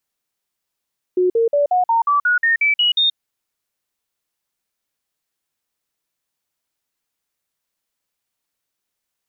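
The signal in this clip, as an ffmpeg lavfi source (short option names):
-f lavfi -i "aevalsrc='0.237*clip(min(mod(t,0.18),0.13-mod(t,0.18))/0.005,0,1)*sin(2*PI*364*pow(2,floor(t/0.18)/3)*mod(t,0.18))':d=1.98:s=44100"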